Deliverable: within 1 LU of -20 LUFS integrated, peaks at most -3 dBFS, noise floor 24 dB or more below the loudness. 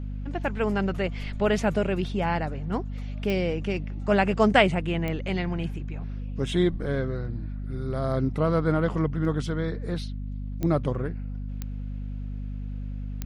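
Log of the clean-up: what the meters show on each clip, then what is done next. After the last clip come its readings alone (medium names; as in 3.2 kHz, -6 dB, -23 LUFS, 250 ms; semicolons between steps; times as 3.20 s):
clicks found 5; hum 50 Hz; highest harmonic 250 Hz; hum level -30 dBFS; loudness -27.5 LUFS; peak level -5.0 dBFS; loudness target -20.0 LUFS
-> de-click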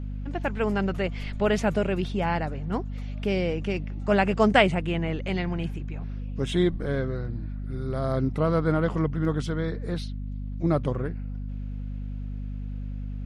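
clicks found 0; hum 50 Hz; highest harmonic 250 Hz; hum level -30 dBFS
-> hum notches 50/100/150/200/250 Hz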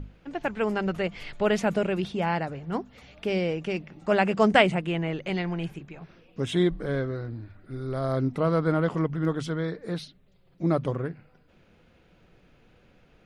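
hum not found; loudness -27.5 LUFS; peak level -5.5 dBFS; loudness target -20.0 LUFS
-> trim +7.5 dB; peak limiter -3 dBFS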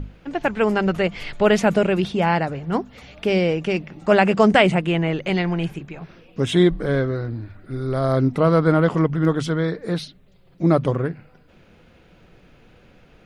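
loudness -20.5 LUFS; peak level -3.0 dBFS; noise floor -53 dBFS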